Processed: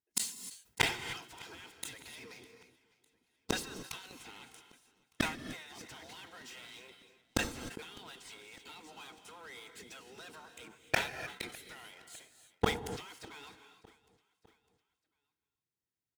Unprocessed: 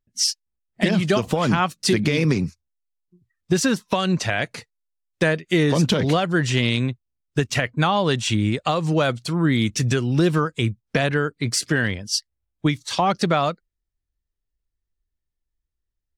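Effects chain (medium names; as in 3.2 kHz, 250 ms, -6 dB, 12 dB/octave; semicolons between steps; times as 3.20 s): spectral gate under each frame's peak -15 dB weak; in parallel at -1 dB: gain riding 0.5 s; on the sum: waveshaping leveller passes 5; comb of notches 580 Hz; inverted gate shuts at -14 dBFS, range -40 dB; on a send: feedback delay 604 ms, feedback 49%, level -23.5 dB; on the sum: gated-style reverb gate 330 ms rising, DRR 8.5 dB; decay stretcher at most 120 dB/s; trim +2 dB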